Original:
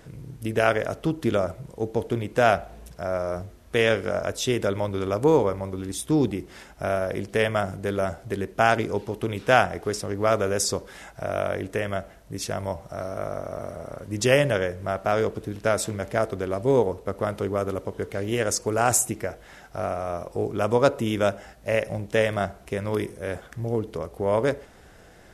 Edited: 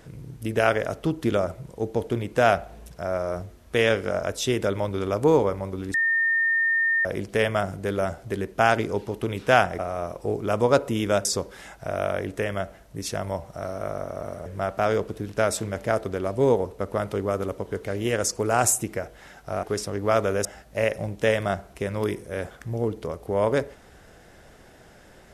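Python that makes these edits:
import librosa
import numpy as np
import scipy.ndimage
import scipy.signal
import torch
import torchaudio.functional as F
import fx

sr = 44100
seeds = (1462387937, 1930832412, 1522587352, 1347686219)

y = fx.edit(x, sr, fx.bleep(start_s=5.94, length_s=1.11, hz=1820.0, db=-19.0),
    fx.swap(start_s=9.79, length_s=0.82, other_s=19.9, other_length_s=1.46),
    fx.cut(start_s=13.82, length_s=0.91), tone=tone)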